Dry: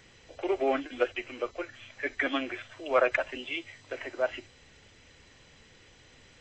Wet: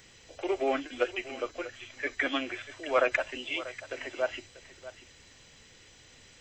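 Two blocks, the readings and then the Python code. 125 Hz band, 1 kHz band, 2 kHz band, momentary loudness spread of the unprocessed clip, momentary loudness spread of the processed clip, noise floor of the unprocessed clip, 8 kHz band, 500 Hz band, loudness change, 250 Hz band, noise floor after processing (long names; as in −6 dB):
−1.0 dB, −1.0 dB, 0.0 dB, 14 LU, 20 LU, −58 dBFS, can't be measured, −1.5 dB, −0.5 dB, −1.5 dB, −57 dBFS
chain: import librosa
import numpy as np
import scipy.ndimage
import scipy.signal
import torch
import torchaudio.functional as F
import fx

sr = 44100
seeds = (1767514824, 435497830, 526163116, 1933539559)

y = fx.high_shelf(x, sr, hz=4900.0, db=11.5)
y = y + 10.0 ** (-15.5 / 20.0) * np.pad(y, (int(639 * sr / 1000.0), 0))[:len(y)]
y = y * librosa.db_to_amplitude(-1.5)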